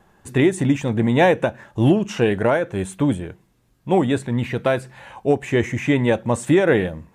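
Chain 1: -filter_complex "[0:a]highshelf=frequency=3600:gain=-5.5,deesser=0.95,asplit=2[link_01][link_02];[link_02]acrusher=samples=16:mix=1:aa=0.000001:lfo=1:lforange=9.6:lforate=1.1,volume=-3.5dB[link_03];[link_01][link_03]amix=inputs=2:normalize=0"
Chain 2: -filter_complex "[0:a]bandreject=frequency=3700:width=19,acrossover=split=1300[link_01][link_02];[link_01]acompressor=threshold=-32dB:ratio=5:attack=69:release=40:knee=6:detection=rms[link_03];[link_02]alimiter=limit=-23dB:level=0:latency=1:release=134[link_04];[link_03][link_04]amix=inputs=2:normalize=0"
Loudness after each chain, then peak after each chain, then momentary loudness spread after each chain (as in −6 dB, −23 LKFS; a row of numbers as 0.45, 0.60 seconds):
−16.5, −29.5 LKFS; −2.5, −13.5 dBFS; 8, 7 LU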